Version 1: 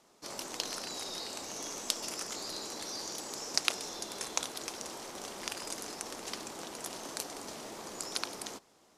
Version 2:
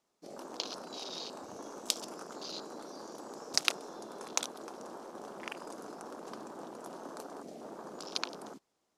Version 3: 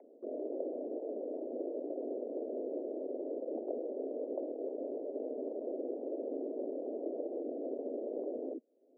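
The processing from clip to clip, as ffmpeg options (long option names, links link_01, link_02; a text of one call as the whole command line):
ffmpeg -i in.wav -af "afwtdn=0.00891,volume=1dB" out.wav
ffmpeg -i in.wav -af "asuperpass=centerf=320:order=12:qfactor=0.81,afreqshift=55,acompressor=mode=upward:threshold=-53dB:ratio=2.5,volume=9.5dB" out.wav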